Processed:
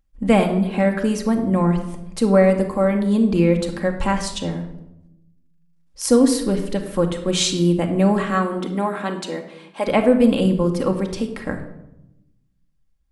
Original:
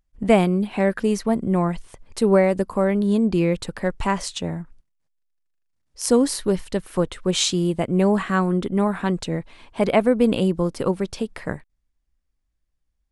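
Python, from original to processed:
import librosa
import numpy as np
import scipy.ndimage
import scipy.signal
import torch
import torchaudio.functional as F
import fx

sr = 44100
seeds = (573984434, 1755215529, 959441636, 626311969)

y = fx.highpass(x, sr, hz=fx.line((8.23, 200.0), (9.86, 480.0)), slope=12, at=(8.23, 9.86), fade=0.02)
y = fx.room_shoebox(y, sr, seeds[0], volume_m3=2900.0, walls='furnished', distance_m=2.2)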